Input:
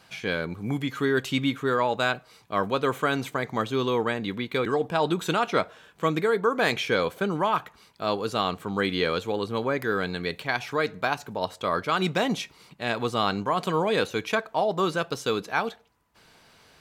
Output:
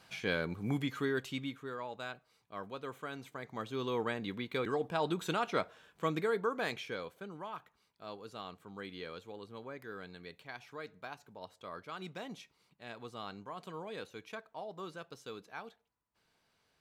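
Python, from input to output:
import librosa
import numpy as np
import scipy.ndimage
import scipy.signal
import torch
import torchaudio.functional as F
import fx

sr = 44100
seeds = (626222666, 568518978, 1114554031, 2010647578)

y = fx.gain(x, sr, db=fx.line((0.79, -5.5), (1.71, -18.0), (3.22, -18.0), (4.02, -9.0), (6.38, -9.0), (7.17, -19.5)))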